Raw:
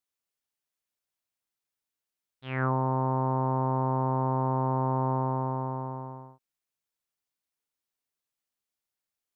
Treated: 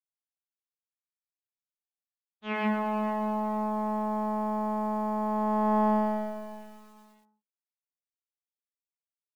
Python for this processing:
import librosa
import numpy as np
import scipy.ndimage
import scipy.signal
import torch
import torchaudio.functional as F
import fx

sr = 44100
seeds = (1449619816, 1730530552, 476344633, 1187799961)

y = fx.law_mismatch(x, sr, coded='A')
y = fx.over_compress(y, sr, threshold_db=-35.0, ratio=-1.0)
y = fx.peak_eq(y, sr, hz=1000.0, db=4.0, octaves=1.5)
y = fx.hum_notches(y, sr, base_hz=60, count=5)
y = fx.pitch_keep_formants(y, sr, semitones=8.5)
y = fx.air_absorb(y, sr, metres=150.0)
y = fx.echo_feedback(y, sr, ms=443, feedback_pct=21, wet_db=-15.0)
y = fx.rev_gated(y, sr, seeds[0], gate_ms=170, shape='rising', drr_db=-3.0)
y = fx.echo_crushed(y, sr, ms=114, feedback_pct=80, bits=9, wet_db=-10.5)